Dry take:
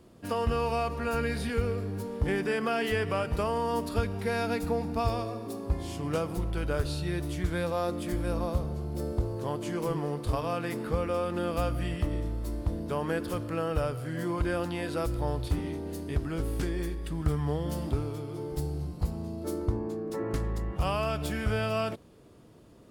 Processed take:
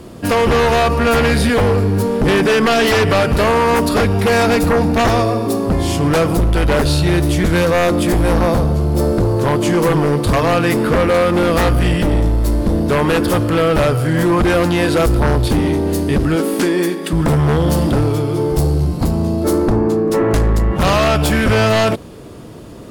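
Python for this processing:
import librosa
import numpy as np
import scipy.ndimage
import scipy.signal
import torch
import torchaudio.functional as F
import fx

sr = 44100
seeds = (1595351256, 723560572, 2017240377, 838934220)

y = fx.brickwall_highpass(x, sr, low_hz=170.0, at=(16.35, 17.13))
y = fx.fold_sine(y, sr, drive_db=11, ceiling_db=-15.0)
y = y * 10.0 ** (5.5 / 20.0)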